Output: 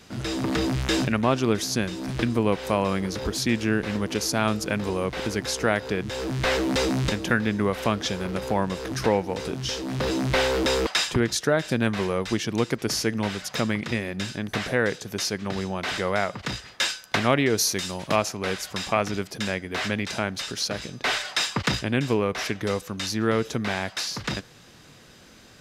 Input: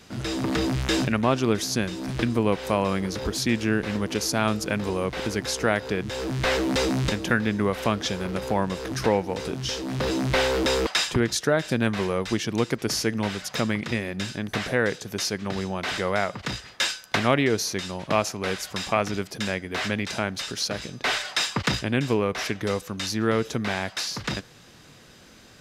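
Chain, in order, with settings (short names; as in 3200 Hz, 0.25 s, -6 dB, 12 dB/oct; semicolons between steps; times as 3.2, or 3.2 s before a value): 17.57–18.16 high shelf 5700 Hz +10.5 dB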